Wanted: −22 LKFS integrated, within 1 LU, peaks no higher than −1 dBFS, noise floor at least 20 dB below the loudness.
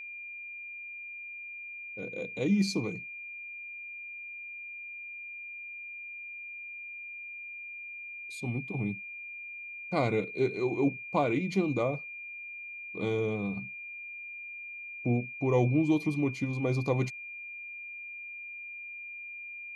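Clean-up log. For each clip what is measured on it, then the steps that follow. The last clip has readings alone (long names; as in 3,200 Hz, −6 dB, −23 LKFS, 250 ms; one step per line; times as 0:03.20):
interfering tone 2,400 Hz; level of the tone −40 dBFS; integrated loudness −34.0 LKFS; sample peak −14.0 dBFS; target loudness −22.0 LKFS
→ notch filter 2,400 Hz, Q 30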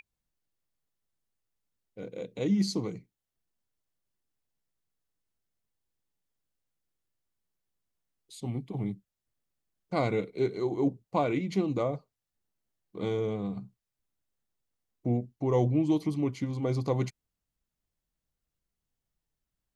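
interfering tone none found; integrated loudness −31.0 LKFS; sample peak −14.0 dBFS; target loudness −22.0 LKFS
→ level +9 dB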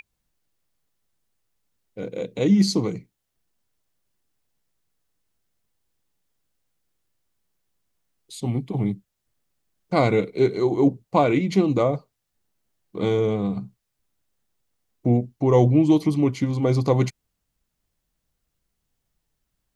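integrated loudness −22.0 LKFS; sample peak −5.0 dBFS; background noise floor −79 dBFS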